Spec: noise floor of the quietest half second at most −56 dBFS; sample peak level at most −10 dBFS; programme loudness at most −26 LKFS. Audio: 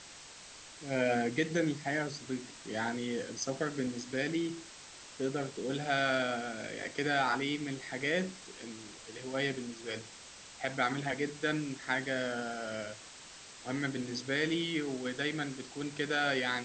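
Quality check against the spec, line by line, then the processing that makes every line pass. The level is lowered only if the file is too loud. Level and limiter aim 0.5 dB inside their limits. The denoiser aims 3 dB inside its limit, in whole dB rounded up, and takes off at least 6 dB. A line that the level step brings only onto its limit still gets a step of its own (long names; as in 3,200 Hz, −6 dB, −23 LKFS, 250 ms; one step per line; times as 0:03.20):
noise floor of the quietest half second −51 dBFS: out of spec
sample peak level −18.0 dBFS: in spec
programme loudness −34.5 LKFS: in spec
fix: broadband denoise 8 dB, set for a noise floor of −51 dBFS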